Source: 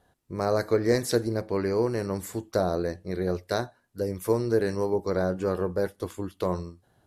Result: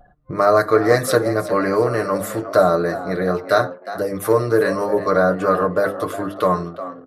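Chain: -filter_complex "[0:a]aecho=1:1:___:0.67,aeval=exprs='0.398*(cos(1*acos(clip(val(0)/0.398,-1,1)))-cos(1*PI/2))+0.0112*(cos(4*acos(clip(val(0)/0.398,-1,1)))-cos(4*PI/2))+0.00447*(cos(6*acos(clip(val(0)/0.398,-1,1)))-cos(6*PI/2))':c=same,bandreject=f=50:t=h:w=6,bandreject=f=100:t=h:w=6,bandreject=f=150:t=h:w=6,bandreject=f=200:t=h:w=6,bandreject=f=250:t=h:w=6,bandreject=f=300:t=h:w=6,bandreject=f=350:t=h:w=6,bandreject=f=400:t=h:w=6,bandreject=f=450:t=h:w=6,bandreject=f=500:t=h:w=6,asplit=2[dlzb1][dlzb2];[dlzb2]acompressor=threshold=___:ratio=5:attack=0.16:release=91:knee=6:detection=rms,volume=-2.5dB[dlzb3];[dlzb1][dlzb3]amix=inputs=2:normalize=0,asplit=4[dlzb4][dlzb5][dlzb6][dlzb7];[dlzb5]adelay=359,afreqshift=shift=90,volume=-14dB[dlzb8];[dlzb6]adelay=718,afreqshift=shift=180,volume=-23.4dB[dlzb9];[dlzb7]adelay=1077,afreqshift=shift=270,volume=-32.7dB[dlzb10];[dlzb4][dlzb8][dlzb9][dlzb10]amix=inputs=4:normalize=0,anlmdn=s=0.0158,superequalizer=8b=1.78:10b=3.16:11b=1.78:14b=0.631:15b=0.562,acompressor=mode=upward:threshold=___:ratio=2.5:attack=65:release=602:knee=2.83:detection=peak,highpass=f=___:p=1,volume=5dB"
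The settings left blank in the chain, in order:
6.6, -33dB, -36dB, 90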